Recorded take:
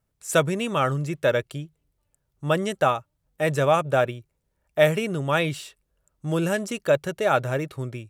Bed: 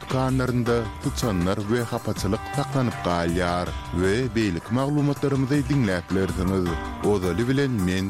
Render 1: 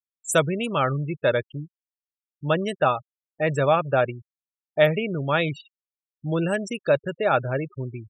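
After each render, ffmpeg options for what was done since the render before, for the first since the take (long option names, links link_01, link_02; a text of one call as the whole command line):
ffmpeg -i in.wav -af "afftfilt=real='re*gte(hypot(re,im),0.0355)':imag='im*gte(hypot(re,im),0.0355)':win_size=1024:overlap=0.75,highshelf=frequency=9600:gain=11.5" out.wav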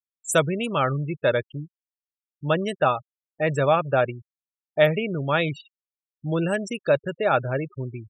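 ffmpeg -i in.wav -af anull out.wav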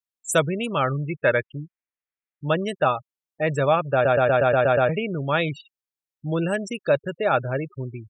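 ffmpeg -i in.wav -filter_complex "[0:a]asettb=1/sr,asplit=3[link_01][link_02][link_03];[link_01]atrim=end=1.094[link_04];[link_02]atrim=start=1.09:end=2.49,asetpts=PTS-STARTPTS,afade=type=in:duration=0.004:curve=qsin,afade=type=out:start_time=1.396:duration=0.004:curve=qsin,lowpass=frequency=2100:width_type=q:width=2.3[link_05];[link_03]atrim=start=2.486[link_06];[link_04][link_05]acrossfade=duration=0.004:curve1=hsin:curve2=qsin[link_07];[link_07][link_06]acrossfade=duration=0.004:curve1=qsin:curve2=hsin,asplit=9[link_08][link_09][link_10][link_11][link_12][link_13][link_14][link_15][link_16];[link_08]atrim=end=4.052[link_17];[link_09]atrim=start=3.928:end=4.052[link_18];[link_10]atrim=start=3.928:end=4.052[link_19];[link_11]atrim=start=3.928:end=4.052[link_20];[link_12]atrim=start=3.928:end=4.052[link_21];[link_13]atrim=start=3.928:end=4.052[link_22];[link_14]atrim=start=3.928:end=4.052[link_23];[link_15]atrim=start=3.928:end=4.052[link_24];[link_16]atrim=start=4.888[link_25];[link_17][link_18]acrossfade=duration=0.004:curve1=hsin:curve2=hsin[link_26];[link_26][link_19]acrossfade=duration=0.004:curve1=hsin:curve2=hsin[link_27];[link_27][link_20]acrossfade=duration=0.004:curve1=hsin:curve2=hsin[link_28];[link_28][link_21]acrossfade=duration=0.004:curve1=hsin:curve2=hsin[link_29];[link_29][link_22]acrossfade=duration=0.004:curve1=hsin:curve2=hsin[link_30];[link_30][link_23]acrossfade=duration=0.004:curve1=hsin:curve2=hsin[link_31];[link_31][link_24]acrossfade=duration=0.004:curve1=hsin:curve2=hsin[link_32];[link_32][link_25]acrossfade=duration=0.004:curve1=hsin:curve2=hsin" out.wav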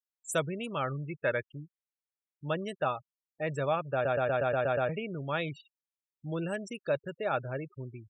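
ffmpeg -i in.wav -af "volume=-10dB" out.wav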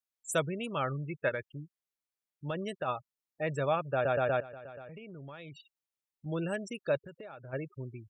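ffmpeg -i in.wav -filter_complex "[0:a]asplit=3[link_01][link_02][link_03];[link_01]afade=type=out:start_time=1.28:duration=0.02[link_04];[link_02]acompressor=threshold=-30dB:ratio=6:attack=3.2:release=140:knee=1:detection=peak,afade=type=in:start_time=1.28:duration=0.02,afade=type=out:start_time=2.87:duration=0.02[link_05];[link_03]afade=type=in:start_time=2.87:duration=0.02[link_06];[link_04][link_05][link_06]amix=inputs=3:normalize=0,asettb=1/sr,asplit=3[link_07][link_08][link_09];[link_07]atrim=end=4.404[link_10];[link_08]atrim=start=4.4:end=6.26,asetpts=PTS-STARTPTS,afade=type=in:duration=0.004:curve=qsin,afade=type=out:start_time=1.856:duration=0.004:curve=qsin,acompressor=threshold=-43dB:ratio=10:attack=3.2:release=140:knee=1:detection=peak[link_11];[link_09]atrim=start=6.256[link_12];[link_10][link_11]acrossfade=duration=0.004:curve1=hsin:curve2=qsin[link_13];[link_13][link_12]acrossfade=duration=0.004:curve1=qsin:curve2=hsin,asplit=3[link_14][link_15][link_16];[link_14]afade=type=out:start_time=6.97:duration=0.02[link_17];[link_15]acompressor=threshold=-42dB:ratio=20:attack=3.2:release=140:knee=1:detection=peak,afade=type=in:start_time=6.97:duration=0.02,afade=type=out:start_time=7.52:duration=0.02[link_18];[link_16]afade=type=in:start_time=7.52:duration=0.02[link_19];[link_17][link_18][link_19]amix=inputs=3:normalize=0" out.wav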